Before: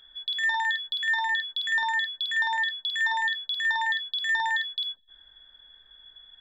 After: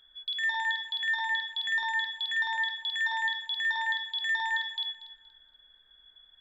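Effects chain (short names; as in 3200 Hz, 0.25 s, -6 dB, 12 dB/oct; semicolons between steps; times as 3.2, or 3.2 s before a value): dynamic EQ 2500 Hz, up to +5 dB, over -38 dBFS, Q 1.1; echo with dull and thin repeats by turns 0.118 s, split 2400 Hz, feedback 54%, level -8 dB; gain -6.5 dB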